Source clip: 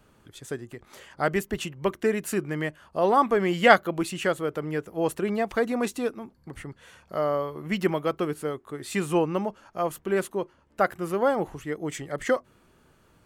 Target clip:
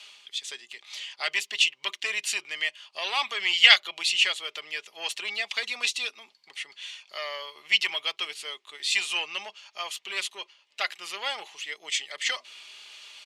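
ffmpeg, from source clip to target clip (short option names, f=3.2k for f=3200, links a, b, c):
-filter_complex "[0:a]aecho=1:1:4.9:0.34,areverse,acompressor=mode=upward:threshold=-37dB:ratio=2.5,areverse,acrossover=split=1100[a][b];[a]asoftclip=type=tanh:threshold=-21.5dB[c];[c][b]amix=inputs=2:normalize=0,aexciter=amount=14.2:drive=4.4:freq=2.3k,asuperpass=centerf=1800:order=4:qfactor=0.57,volume=-5dB"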